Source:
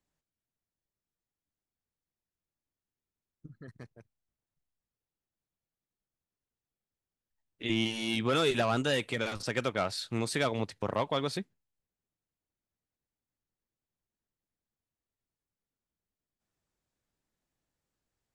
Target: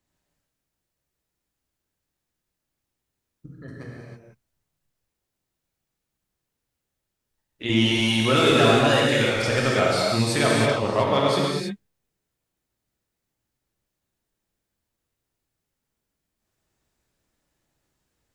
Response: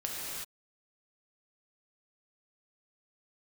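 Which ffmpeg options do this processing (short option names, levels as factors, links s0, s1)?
-filter_complex "[1:a]atrim=start_sample=2205,afade=t=out:st=0.38:d=0.01,atrim=end_sample=17199[s0];[0:a][s0]afir=irnorm=-1:irlink=0,volume=2.24"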